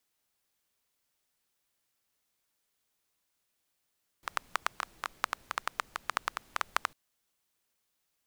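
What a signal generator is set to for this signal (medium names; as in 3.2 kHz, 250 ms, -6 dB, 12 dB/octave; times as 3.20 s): rain from filtered ticks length 2.70 s, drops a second 8.4, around 1.2 kHz, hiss -22.5 dB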